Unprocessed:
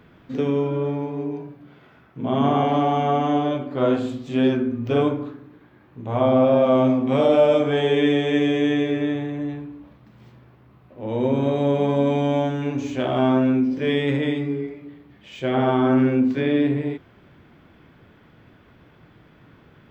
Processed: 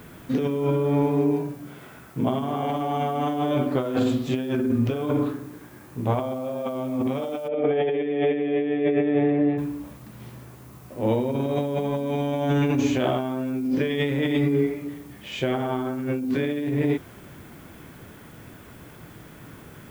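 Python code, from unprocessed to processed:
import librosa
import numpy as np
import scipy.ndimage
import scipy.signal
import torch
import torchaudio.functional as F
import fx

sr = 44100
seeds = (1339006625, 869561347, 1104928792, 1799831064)

y = fx.over_compress(x, sr, threshold_db=-26.0, ratio=-1.0)
y = fx.dmg_noise_colour(y, sr, seeds[0], colour='blue', level_db=-57.0)
y = fx.cabinet(y, sr, low_hz=120.0, low_slope=12, high_hz=2600.0, hz=(130.0, 470.0, 730.0, 1000.0, 1500.0), db=(-5, 7, 4, -8, -7), at=(7.47, 9.57), fade=0.02)
y = F.gain(torch.from_numpy(y), 1.5).numpy()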